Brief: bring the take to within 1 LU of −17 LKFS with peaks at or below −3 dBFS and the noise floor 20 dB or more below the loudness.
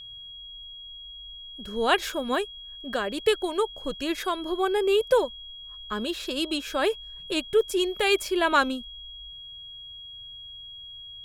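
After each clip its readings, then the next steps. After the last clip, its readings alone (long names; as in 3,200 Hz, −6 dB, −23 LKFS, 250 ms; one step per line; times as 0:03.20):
interfering tone 3,300 Hz; level of the tone −40 dBFS; integrated loudness −26.5 LKFS; sample peak −9.0 dBFS; target loudness −17.0 LKFS
→ notch filter 3,300 Hz, Q 30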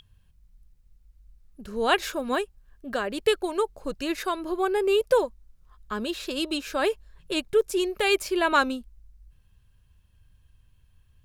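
interfering tone none found; integrated loudness −26.5 LKFS; sample peak −9.0 dBFS; target loudness −17.0 LKFS
→ level +9.5 dB
brickwall limiter −3 dBFS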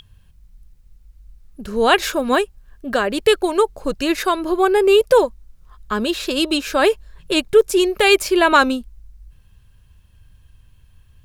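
integrated loudness −17.5 LKFS; sample peak −3.0 dBFS; background noise floor −52 dBFS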